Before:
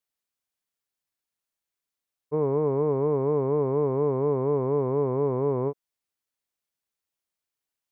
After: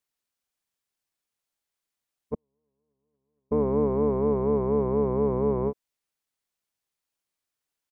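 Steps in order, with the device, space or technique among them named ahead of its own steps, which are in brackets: 2.34–3.52 s: gate -16 dBFS, range -57 dB; octave pedal (harmony voices -12 st -5 dB)

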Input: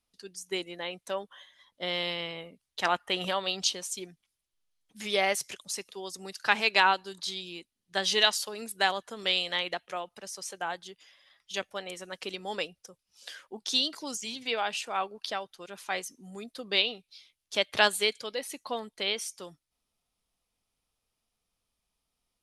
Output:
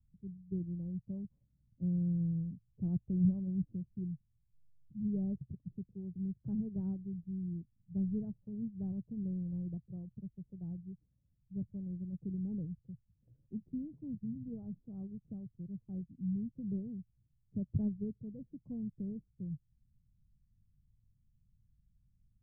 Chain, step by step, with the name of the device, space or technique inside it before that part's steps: the neighbour's flat through the wall (low-pass 160 Hz 24 dB/octave; peaking EQ 120 Hz +7 dB 0.89 oct); trim +16.5 dB

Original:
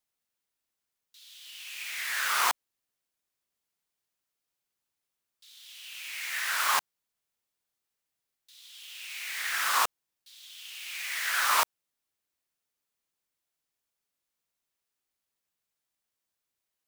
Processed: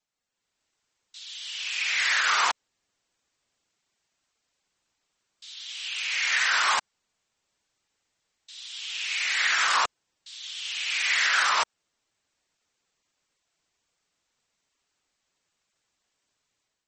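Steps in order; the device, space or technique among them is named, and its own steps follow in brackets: low-bitrate web radio (level rider gain up to 9.5 dB; peak limiter -14.5 dBFS, peak gain reduction 10.5 dB; trim +1.5 dB; MP3 32 kbps 48 kHz)

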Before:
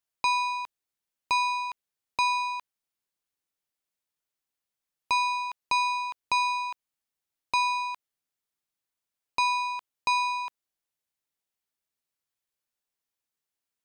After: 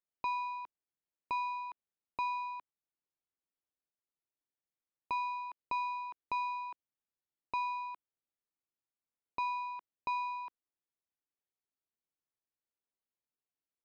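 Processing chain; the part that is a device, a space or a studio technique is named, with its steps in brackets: phone in a pocket (low-pass 3.4 kHz 12 dB/octave; peaking EQ 330 Hz +4 dB 0.93 oct; treble shelf 2.2 kHz -11 dB); trim -7 dB

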